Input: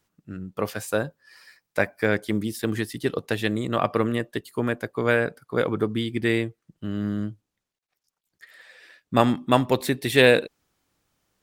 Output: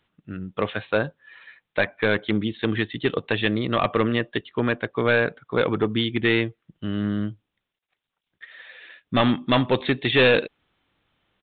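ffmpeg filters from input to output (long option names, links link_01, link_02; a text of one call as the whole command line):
ffmpeg -i in.wav -af "highshelf=frequency=2300:gain=9,aresample=8000,asoftclip=type=hard:threshold=-15dB,aresample=44100,volume=2dB" out.wav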